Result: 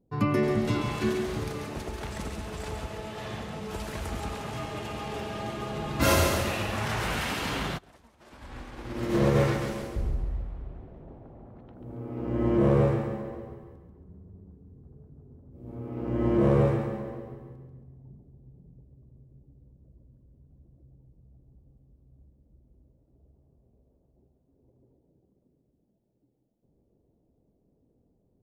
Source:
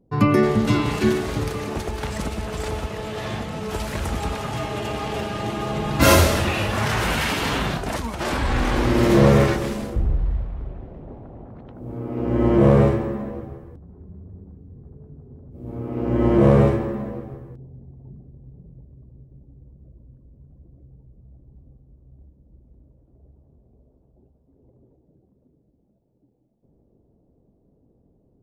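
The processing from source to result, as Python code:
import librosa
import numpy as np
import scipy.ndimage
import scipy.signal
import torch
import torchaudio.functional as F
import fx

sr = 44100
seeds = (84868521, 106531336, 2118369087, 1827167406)

y = fx.echo_thinned(x, sr, ms=138, feedback_pct=43, hz=160.0, wet_db=-6.0)
y = fx.upward_expand(y, sr, threshold_db=-27.0, expansion=2.5, at=(7.77, 9.35), fade=0.02)
y = y * 10.0 ** (-8.5 / 20.0)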